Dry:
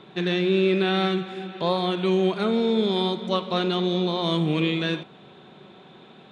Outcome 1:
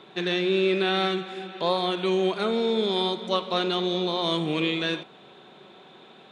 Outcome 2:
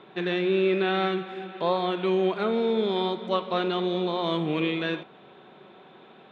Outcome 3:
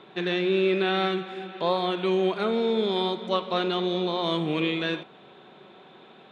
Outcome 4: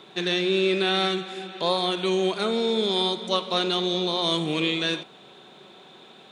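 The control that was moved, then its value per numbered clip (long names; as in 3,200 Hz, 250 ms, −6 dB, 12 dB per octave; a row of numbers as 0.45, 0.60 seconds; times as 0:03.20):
bass and treble, treble: +3, −14, −6, +12 decibels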